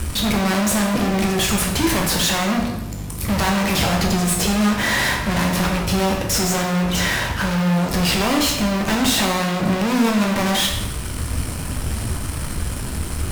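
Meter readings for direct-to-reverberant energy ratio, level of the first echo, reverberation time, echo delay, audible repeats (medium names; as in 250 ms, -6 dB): 0.5 dB, no echo, 0.90 s, no echo, no echo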